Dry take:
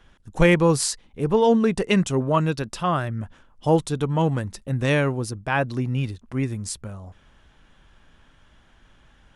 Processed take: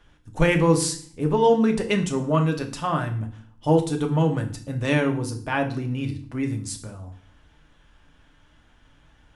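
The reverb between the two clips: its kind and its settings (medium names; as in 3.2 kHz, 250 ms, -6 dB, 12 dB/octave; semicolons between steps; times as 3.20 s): FDN reverb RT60 0.47 s, low-frequency decay 1.5×, high-frequency decay 1×, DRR 3.5 dB; trim -3 dB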